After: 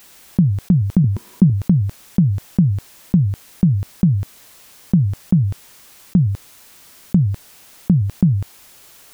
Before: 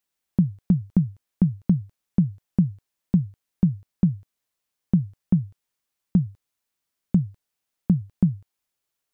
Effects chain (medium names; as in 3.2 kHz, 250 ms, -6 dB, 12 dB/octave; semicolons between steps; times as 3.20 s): 1.04–1.50 s: small resonant body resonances 220/360/970 Hz, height 13 dB, ringing for 35 ms; level flattener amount 70%; trim -3.5 dB